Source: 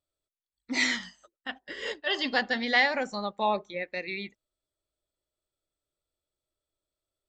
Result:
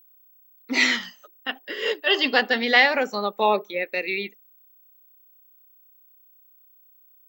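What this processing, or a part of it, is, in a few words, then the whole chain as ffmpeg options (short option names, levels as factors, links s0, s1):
old television with a line whistle: -af "highpass=f=200:w=0.5412,highpass=f=200:w=1.3066,equalizer=f=430:t=q:w=4:g=8,equalizer=f=1300:t=q:w=4:g=4,equalizer=f=2700:t=q:w=4:g=7,lowpass=f=6800:w=0.5412,lowpass=f=6800:w=1.3066,aeval=exprs='val(0)+0.00126*sin(2*PI*15734*n/s)':c=same,volume=1.78"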